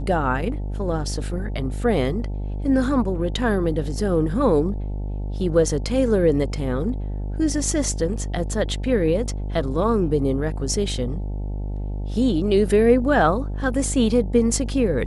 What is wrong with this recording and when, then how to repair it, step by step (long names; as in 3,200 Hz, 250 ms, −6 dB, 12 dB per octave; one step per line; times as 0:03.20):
mains buzz 50 Hz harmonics 18 −27 dBFS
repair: hum removal 50 Hz, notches 18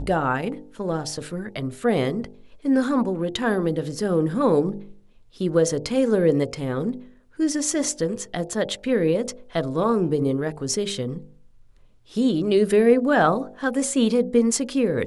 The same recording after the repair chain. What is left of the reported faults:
none of them is left